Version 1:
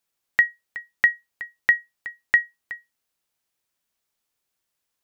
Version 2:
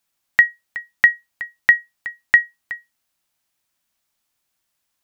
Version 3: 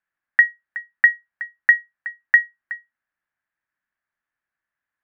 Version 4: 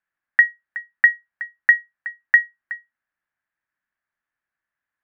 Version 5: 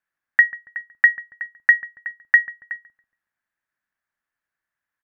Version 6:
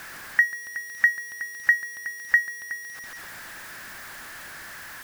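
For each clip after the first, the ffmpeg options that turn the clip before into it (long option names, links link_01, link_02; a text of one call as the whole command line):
ffmpeg -i in.wav -af "equalizer=frequency=440:width=4.5:gain=-9.5,volume=5dB" out.wav
ffmpeg -i in.wav -af "lowpass=frequency=1700:width_type=q:width=5.2,volume=-10.5dB" out.wav
ffmpeg -i in.wav -af anull out.wav
ffmpeg -i in.wav -filter_complex "[0:a]asplit=2[link_01][link_02];[link_02]adelay=140,lowpass=frequency=830:poles=1,volume=-14dB,asplit=2[link_03][link_04];[link_04]adelay=140,lowpass=frequency=830:poles=1,volume=0.5,asplit=2[link_05][link_06];[link_06]adelay=140,lowpass=frequency=830:poles=1,volume=0.5,asplit=2[link_07][link_08];[link_08]adelay=140,lowpass=frequency=830:poles=1,volume=0.5,asplit=2[link_09][link_10];[link_10]adelay=140,lowpass=frequency=830:poles=1,volume=0.5[link_11];[link_01][link_03][link_05][link_07][link_09][link_11]amix=inputs=6:normalize=0" out.wav
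ffmpeg -i in.wav -af "aeval=exprs='val(0)+0.5*0.0398*sgn(val(0))':channel_layout=same,volume=-5.5dB" out.wav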